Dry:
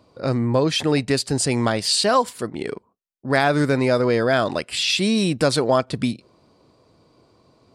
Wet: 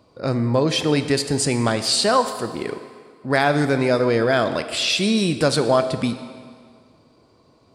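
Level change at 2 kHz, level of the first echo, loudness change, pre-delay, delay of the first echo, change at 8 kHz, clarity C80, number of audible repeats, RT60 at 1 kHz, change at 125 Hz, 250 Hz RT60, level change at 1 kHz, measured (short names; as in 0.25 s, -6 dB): +0.5 dB, none, +0.5 dB, 11 ms, none, +0.5 dB, 11.5 dB, none, 2.0 s, 0.0 dB, 2.0 s, +0.5 dB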